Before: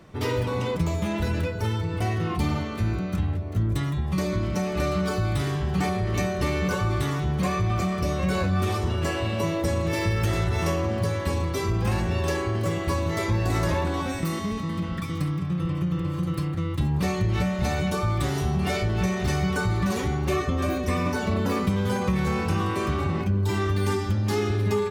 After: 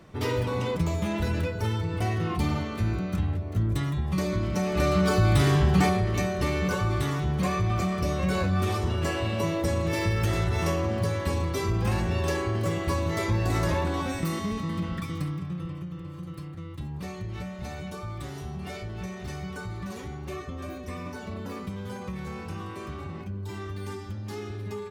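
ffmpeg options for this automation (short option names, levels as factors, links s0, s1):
-af "volume=2,afade=t=in:st=4.52:d=1.07:silence=0.421697,afade=t=out:st=5.59:d=0.55:silence=0.421697,afade=t=out:st=14.86:d=1.03:silence=0.316228"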